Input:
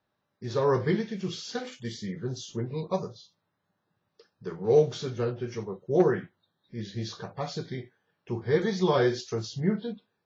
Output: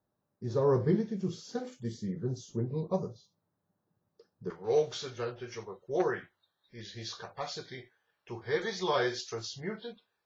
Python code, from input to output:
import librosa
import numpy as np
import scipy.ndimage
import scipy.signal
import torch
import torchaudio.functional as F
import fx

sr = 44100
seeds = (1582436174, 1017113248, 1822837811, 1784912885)

y = fx.peak_eq(x, sr, hz=fx.steps((0.0, 2700.0), (4.5, 180.0)), db=-15.0, octaves=2.3)